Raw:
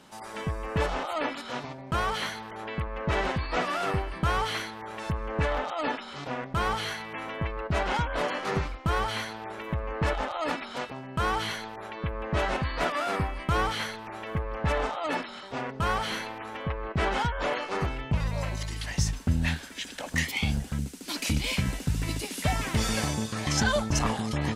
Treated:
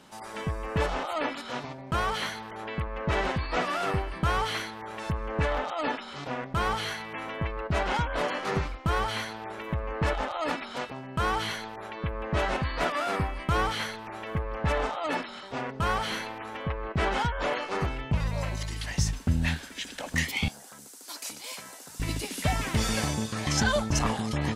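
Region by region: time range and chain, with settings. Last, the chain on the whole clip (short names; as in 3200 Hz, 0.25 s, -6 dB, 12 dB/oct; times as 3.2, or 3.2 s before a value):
20.48–22 HPF 770 Hz + upward compressor, threshold -38 dBFS + bell 2600 Hz -13 dB 1.5 oct
whole clip: dry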